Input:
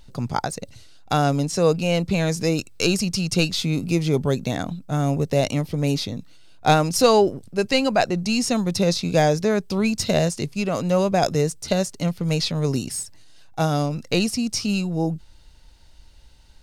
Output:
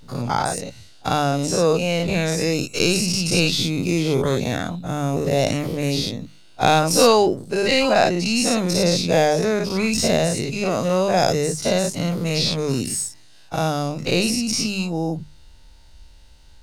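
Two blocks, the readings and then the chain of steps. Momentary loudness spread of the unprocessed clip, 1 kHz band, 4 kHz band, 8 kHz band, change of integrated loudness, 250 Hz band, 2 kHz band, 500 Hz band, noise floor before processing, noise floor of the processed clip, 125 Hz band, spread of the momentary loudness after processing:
8 LU, +2.5 dB, +4.0 dB, +5.0 dB, +2.0 dB, +0.5 dB, +3.5 dB, +2.0 dB, -48 dBFS, -46 dBFS, -1.0 dB, 8 LU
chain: spectral dilation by 0.12 s; notches 50/100/150/200 Hz; gain -2.5 dB

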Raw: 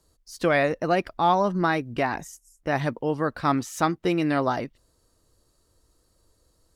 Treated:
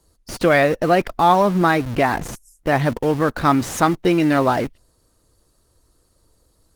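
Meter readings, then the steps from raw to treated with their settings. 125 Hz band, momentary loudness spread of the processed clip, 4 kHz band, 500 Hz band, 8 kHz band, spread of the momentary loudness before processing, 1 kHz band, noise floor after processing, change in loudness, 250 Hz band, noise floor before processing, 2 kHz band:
+7.5 dB, 10 LU, +6.0 dB, +7.0 dB, +7.5 dB, 8 LU, +6.5 dB, -63 dBFS, +7.0 dB, +7.0 dB, -67 dBFS, +6.5 dB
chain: in parallel at -10.5 dB: Schmitt trigger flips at -37.5 dBFS; on the sum: gain +6 dB; Opus 24 kbps 48000 Hz

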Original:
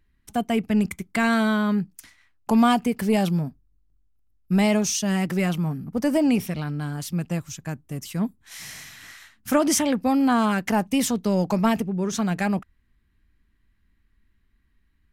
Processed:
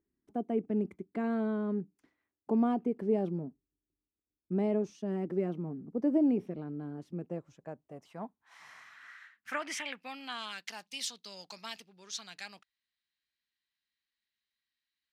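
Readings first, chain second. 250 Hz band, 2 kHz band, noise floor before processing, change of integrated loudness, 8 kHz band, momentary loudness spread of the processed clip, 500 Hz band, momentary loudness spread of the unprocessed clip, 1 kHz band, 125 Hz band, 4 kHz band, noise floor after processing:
-11.5 dB, -14.5 dB, -66 dBFS, -11.0 dB, -17.5 dB, 19 LU, -8.5 dB, 14 LU, -15.5 dB, -14.5 dB, -10.5 dB, under -85 dBFS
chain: band-pass sweep 370 Hz -> 4200 Hz, 7.11–10.72; gain -1.5 dB

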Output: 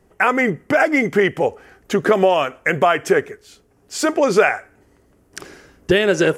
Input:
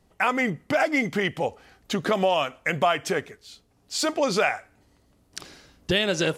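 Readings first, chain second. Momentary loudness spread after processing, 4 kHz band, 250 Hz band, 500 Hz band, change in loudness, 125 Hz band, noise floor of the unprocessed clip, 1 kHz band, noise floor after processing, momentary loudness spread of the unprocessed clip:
14 LU, 0.0 dB, +7.5 dB, +9.0 dB, +7.0 dB, +5.0 dB, -64 dBFS, +6.0 dB, -57 dBFS, 18 LU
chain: fifteen-band EQ 400 Hz +8 dB, 1600 Hz +5 dB, 4000 Hz -9 dB; gain +4.5 dB

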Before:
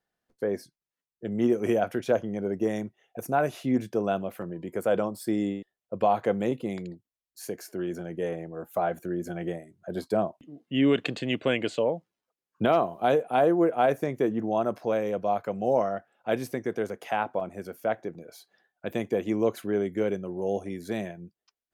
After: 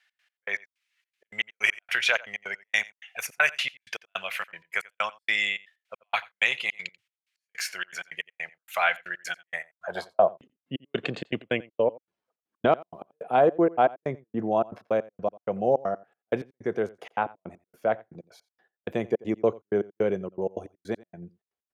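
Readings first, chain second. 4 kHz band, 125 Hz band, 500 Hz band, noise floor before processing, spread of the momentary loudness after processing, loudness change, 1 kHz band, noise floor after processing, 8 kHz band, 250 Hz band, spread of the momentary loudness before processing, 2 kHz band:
+7.0 dB, -5.0 dB, -1.5 dB, under -85 dBFS, 12 LU, +0.5 dB, 0.0 dB, under -85 dBFS, +5.0 dB, -6.0 dB, 13 LU, +10.0 dB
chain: passive tone stack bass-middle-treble 10-0-10; step gate "x.x..x..xxx." 159 bpm -60 dB; outdoor echo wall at 15 m, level -22 dB; band-pass sweep 2300 Hz -> 310 Hz, 9.42–10.52; maximiser +36 dB; gain -7 dB

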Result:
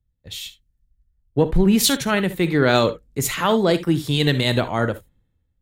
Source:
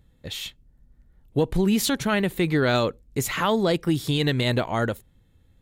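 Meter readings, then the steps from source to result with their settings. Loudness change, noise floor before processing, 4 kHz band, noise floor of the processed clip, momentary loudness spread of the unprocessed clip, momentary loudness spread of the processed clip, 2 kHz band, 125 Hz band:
+4.5 dB, -60 dBFS, +5.0 dB, -71 dBFS, 12 LU, 16 LU, +3.5 dB, +3.5 dB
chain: non-linear reverb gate 90 ms rising, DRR 12 dB; three-band expander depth 70%; gain +3.5 dB

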